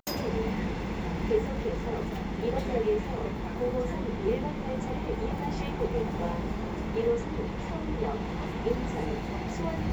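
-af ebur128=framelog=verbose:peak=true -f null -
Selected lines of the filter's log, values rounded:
Integrated loudness:
  I:         -31.5 LUFS
  Threshold: -41.5 LUFS
Loudness range:
  LRA:         1.1 LU
  Threshold: -51.4 LUFS
  LRA low:   -31.9 LUFS
  LRA high:  -30.7 LUFS
True peak:
  Peak:      -14.8 dBFS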